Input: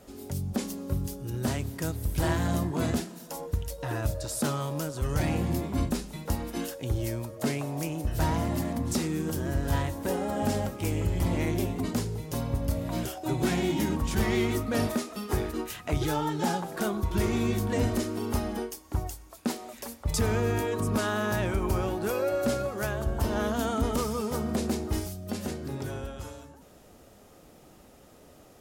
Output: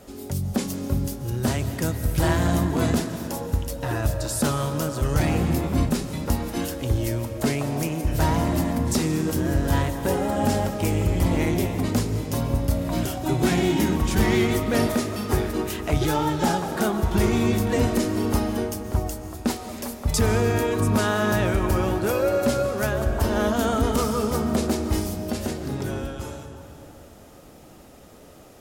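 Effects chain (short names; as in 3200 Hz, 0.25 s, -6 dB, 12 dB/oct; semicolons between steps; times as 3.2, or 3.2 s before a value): 21.53–22.65 hard clip -20 dBFS, distortion -37 dB; reverb RT60 3.2 s, pre-delay 0.102 s, DRR 8.5 dB; gain +5.5 dB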